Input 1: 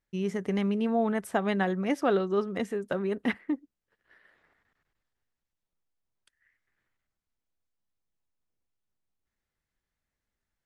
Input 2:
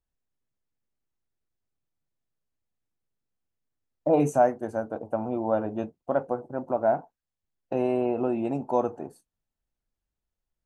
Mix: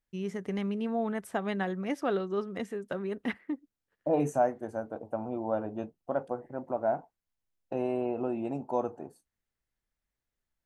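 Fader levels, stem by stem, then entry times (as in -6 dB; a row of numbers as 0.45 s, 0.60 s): -4.5 dB, -5.5 dB; 0.00 s, 0.00 s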